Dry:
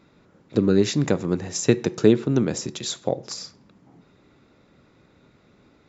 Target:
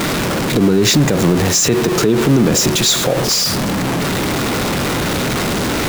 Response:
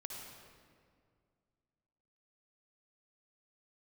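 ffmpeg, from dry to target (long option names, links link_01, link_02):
-af "aeval=exprs='val(0)+0.5*0.0794*sgn(val(0))':channel_layout=same,alimiter=level_in=14dB:limit=-1dB:release=50:level=0:latency=1,volume=-4dB"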